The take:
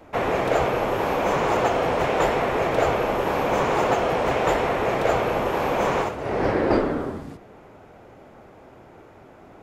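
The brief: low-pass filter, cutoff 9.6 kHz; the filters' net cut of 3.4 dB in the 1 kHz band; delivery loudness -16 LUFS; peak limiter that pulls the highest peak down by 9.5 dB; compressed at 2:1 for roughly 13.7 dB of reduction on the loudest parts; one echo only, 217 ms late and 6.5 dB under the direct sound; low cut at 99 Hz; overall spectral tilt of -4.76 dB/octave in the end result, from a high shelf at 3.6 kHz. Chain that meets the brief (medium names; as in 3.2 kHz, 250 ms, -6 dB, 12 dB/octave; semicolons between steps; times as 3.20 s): high-pass 99 Hz; low-pass 9.6 kHz; peaking EQ 1 kHz -4 dB; treble shelf 3.6 kHz -7 dB; compression 2:1, threshold -44 dBFS; peak limiter -31 dBFS; delay 217 ms -6.5 dB; trim +24 dB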